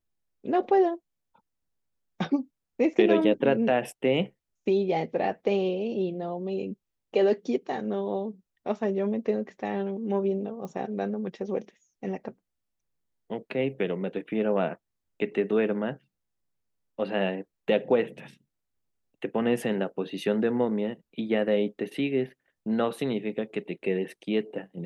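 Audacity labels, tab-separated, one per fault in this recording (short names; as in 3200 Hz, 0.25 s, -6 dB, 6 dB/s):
10.650000	10.650000	pop -26 dBFS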